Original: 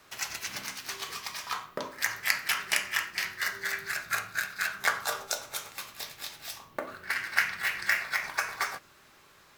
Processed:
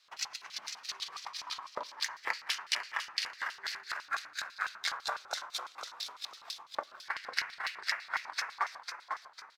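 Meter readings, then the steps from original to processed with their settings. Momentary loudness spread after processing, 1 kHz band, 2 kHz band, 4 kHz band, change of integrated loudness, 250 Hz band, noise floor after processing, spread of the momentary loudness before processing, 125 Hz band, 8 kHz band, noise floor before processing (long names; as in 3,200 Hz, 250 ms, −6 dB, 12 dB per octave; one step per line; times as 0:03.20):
8 LU, −2.5 dB, −8.0 dB, −1.5 dB, −6.0 dB, below −10 dB, −58 dBFS, 12 LU, below −15 dB, −7.5 dB, −58 dBFS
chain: echo with shifted repeats 499 ms, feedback 41%, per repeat −94 Hz, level −6 dB
auto-filter band-pass square 6 Hz 970–4,200 Hz
transient designer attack +5 dB, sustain −2 dB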